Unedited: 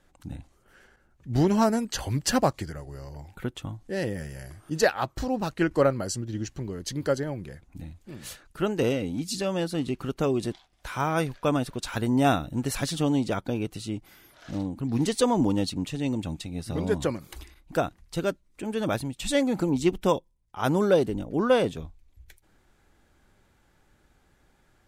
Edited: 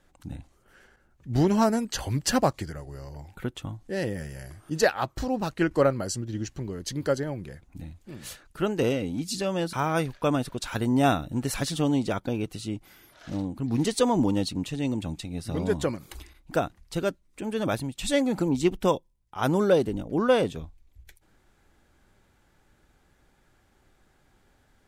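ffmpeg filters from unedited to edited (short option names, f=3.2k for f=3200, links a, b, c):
-filter_complex "[0:a]asplit=2[a][b];[a]atrim=end=9.732[c];[b]atrim=start=10.938[d];[c][d]acrossfade=d=0.004:c1=hsin:c2=hsin"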